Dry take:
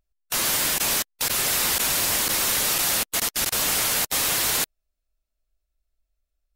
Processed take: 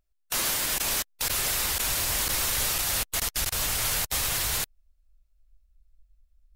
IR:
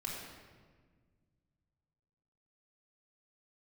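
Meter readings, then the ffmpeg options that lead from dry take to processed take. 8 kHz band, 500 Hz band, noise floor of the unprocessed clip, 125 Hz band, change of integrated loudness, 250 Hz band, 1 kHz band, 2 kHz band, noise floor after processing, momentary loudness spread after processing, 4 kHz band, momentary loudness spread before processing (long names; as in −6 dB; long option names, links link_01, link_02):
−4.5 dB, −5.5 dB, −80 dBFS, +1.5 dB, −4.5 dB, −6.5 dB, −5.0 dB, −4.5 dB, −69 dBFS, 3 LU, −4.5 dB, 3 LU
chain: -af "asubboost=boost=7.5:cutoff=95,alimiter=limit=-17.5dB:level=0:latency=1:release=163"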